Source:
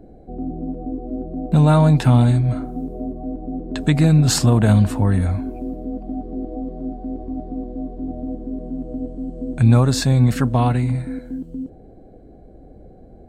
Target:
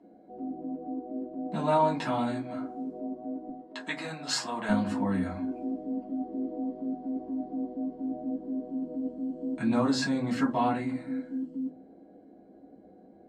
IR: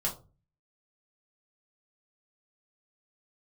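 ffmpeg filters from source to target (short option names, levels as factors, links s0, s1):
-filter_complex "[0:a]asetnsamples=n=441:p=0,asendcmd='3.49 highpass f 720;4.69 highpass f 280',highpass=370,lowpass=6000[s0];[1:a]atrim=start_sample=2205,asetrate=66150,aresample=44100[s1];[s0][s1]afir=irnorm=-1:irlink=0,volume=0.422"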